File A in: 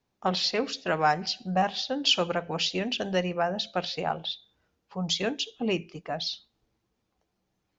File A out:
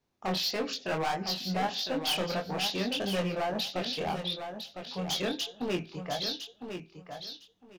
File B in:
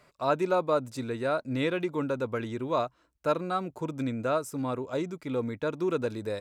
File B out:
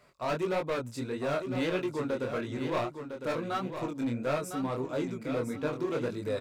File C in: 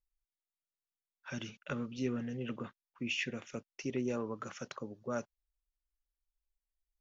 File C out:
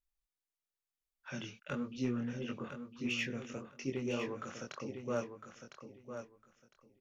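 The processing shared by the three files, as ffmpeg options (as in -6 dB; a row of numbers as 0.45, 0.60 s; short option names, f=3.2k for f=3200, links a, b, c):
-af "asoftclip=type=hard:threshold=-26dB,flanger=delay=20:depth=6.1:speed=1.6,aecho=1:1:1006|2012|3018:0.398|0.0756|0.0144,volume=2dB"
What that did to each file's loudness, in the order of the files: -4.0, -2.5, -0.5 LU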